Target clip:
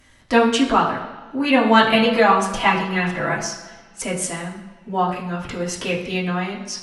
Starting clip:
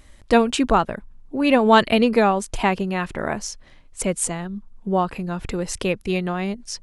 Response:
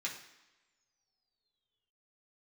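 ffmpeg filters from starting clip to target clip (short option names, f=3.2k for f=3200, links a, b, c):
-filter_complex "[0:a]asettb=1/sr,asplit=3[a][b][c];[a]atrim=end=1.924[d];[b]atrim=start=1.92:end=3.45,asetpts=PTS-STARTPTS,afade=t=in:d=0.004:c=qsin,afade=t=out:st=1.526:d=0.004:c=qsin,aecho=1:1:6:0.85,atrim=end_sample=67473[e];[c]atrim=start=3.446[f];[d][e]acrossfade=d=0.004:c1=hsin:c2=qsin[g];[g][f]acrossfade=d=0.004:c1=qsin:c2=hsin[h];[1:a]atrim=start_sample=2205,asetrate=35721,aresample=44100[i];[h][i]afir=irnorm=-1:irlink=0"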